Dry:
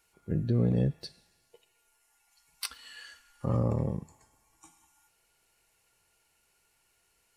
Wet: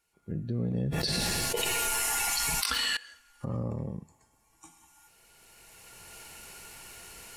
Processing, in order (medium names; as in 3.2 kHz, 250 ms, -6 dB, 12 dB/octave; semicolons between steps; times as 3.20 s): recorder AGC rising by 13 dB/s; peaking EQ 200 Hz +3 dB 0.87 oct; 0.74–2.97 s: level flattener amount 100%; trim -6.5 dB